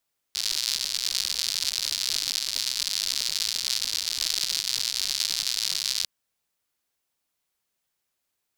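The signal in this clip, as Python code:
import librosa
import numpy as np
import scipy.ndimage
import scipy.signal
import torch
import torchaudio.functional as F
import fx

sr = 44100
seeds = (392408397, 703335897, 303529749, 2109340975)

y = fx.rain(sr, seeds[0], length_s=5.7, drops_per_s=130.0, hz=4500.0, bed_db=-27.5)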